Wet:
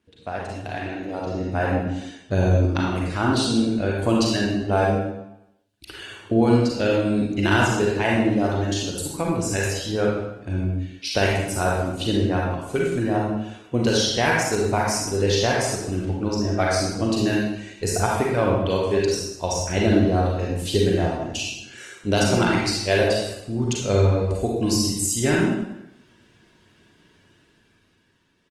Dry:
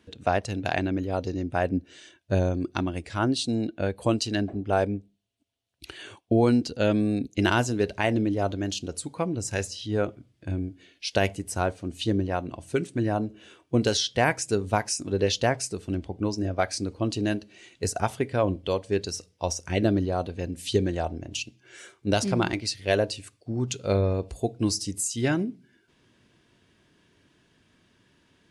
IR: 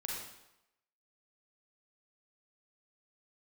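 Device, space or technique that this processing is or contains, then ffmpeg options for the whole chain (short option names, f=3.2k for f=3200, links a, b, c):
speakerphone in a meeting room: -filter_complex "[1:a]atrim=start_sample=2205[a];[0:a][a]afir=irnorm=-1:irlink=0,asplit=2[b][c];[c]adelay=90,highpass=300,lowpass=3.4k,asoftclip=type=hard:threshold=-18dB,volume=-15dB[d];[b][d]amix=inputs=2:normalize=0,dynaudnorm=f=210:g=13:m=11dB,volume=-4.5dB" -ar 48000 -c:a libopus -b:a 24k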